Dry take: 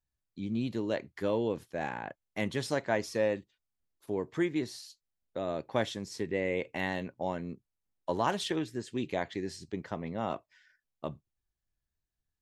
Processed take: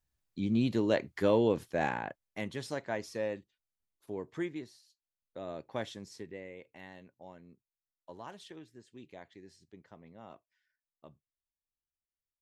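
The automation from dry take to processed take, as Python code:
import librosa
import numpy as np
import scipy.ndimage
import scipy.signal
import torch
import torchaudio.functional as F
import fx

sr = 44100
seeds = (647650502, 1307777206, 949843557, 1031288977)

y = fx.gain(x, sr, db=fx.line((1.89, 4.0), (2.47, -6.0), (4.48, -6.0), (4.83, -17.5), (5.43, -7.0), (6.08, -7.0), (6.56, -17.0)))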